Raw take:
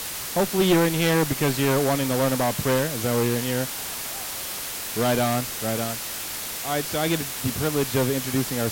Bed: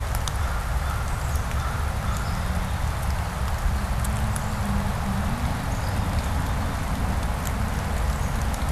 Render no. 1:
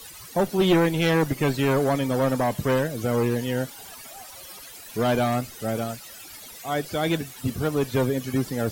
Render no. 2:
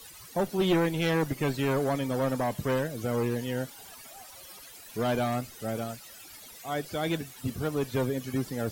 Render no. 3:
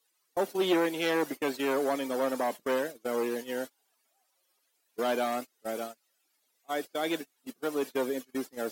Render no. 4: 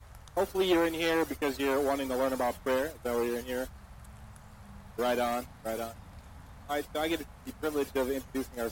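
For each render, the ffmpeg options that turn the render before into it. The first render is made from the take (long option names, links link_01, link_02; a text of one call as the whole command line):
ffmpeg -i in.wav -af "afftdn=noise_reduction=16:noise_floor=-32" out.wav
ffmpeg -i in.wav -af "volume=-5.5dB" out.wav
ffmpeg -i in.wav -af "highpass=frequency=270:width=0.5412,highpass=frequency=270:width=1.3066,agate=range=-27dB:threshold=-35dB:ratio=16:detection=peak" out.wav
ffmpeg -i in.wav -i bed.wav -filter_complex "[1:a]volume=-24.5dB[link_01];[0:a][link_01]amix=inputs=2:normalize=0" out.wav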